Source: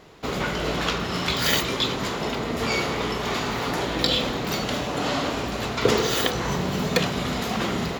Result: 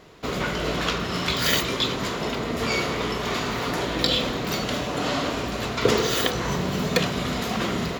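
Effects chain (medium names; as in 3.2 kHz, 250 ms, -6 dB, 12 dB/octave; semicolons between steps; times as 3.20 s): band-stop 830 Hz, Q 12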